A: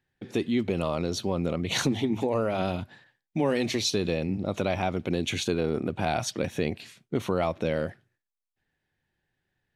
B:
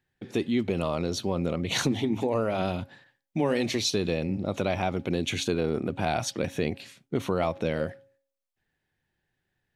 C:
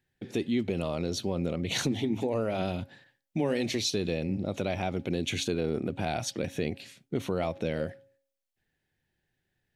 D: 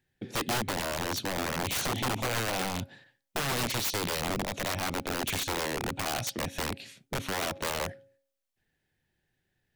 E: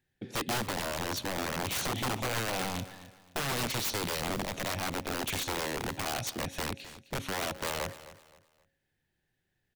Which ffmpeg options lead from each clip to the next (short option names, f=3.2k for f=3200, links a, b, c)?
-af "bandreject=f=273.7:t=h:w=4,bandreject=f=547.4:t=h:w=4,bandreject=f=821.1:t=h:w=4"
-filter_complex "[0:a]equalizer=f=1.1k:w=1.7:g=-6,asplit=2[a][b];[b]alimiter=limit=-23dB:level=0:latency=1:release=356,volume=-0.5dB[c];[a][c]amix=inputs=2:normalize=0,volume=-5.5dB"
-af "aeval=exprs='(mod(18.8*val(0)+1,2)-1)/18.8':c=same,volume=1dB"
-af "aecho=1:1:261|522|783:0.158|0.0507|0.0162,volume=-2dB"